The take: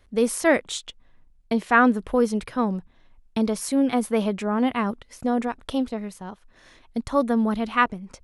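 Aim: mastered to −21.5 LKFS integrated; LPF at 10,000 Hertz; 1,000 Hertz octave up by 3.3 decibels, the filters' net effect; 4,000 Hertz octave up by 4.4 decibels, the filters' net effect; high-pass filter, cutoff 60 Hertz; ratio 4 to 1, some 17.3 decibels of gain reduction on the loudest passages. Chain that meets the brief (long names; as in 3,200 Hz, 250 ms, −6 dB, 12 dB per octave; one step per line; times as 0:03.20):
high-pass filter 60 Hz
low-pass filter 10,000 Hz
parametric band 1,000 Hz +4 dB
parametric band 4,000 Hz +5.5 dB
downward compressor 4 to 1, threshold −32 dBFS
level +13.5 dB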